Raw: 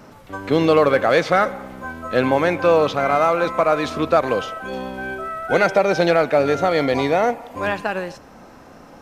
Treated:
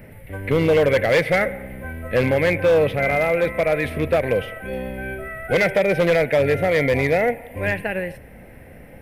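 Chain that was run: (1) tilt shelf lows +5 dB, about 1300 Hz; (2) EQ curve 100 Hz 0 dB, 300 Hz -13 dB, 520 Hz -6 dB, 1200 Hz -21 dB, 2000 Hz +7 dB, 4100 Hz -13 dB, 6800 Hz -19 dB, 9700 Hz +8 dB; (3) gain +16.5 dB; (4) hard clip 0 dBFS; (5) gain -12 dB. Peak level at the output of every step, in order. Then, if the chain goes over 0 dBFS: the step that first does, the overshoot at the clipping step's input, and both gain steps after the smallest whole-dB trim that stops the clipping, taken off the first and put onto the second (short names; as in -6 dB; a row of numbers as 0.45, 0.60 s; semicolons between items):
-1.0, -7.0, +9.5, 0.0, -12.0 dBFS; step 3, 9.5 dB; step 3 +6.5 dB, step 5 -2 dB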